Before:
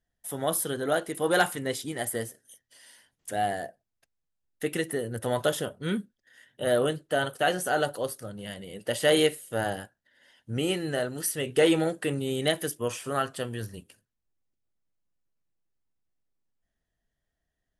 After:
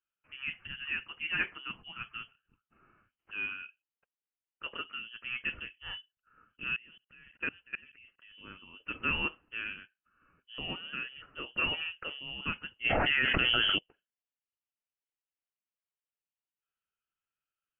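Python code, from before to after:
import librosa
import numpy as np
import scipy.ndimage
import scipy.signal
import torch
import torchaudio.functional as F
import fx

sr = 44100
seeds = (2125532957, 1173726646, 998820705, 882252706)

y = fx.highpass(x, sr, hz=460.0, slope=6)
y = fx.high_shelf(y, sr, hz=2000.0, db=2.5)
y = fx.level_steps(y, sr, step_db=24, at=(6.76, 8.32))
y = fx.freq_invert(y, sr, carrier_hz=3200)
y = fx.env_flatten(y, sr, amount_pct=100, at=(12.84, 13.77), fade=0.02)
y = y * 10.0 ** (-8.0 / 20.0)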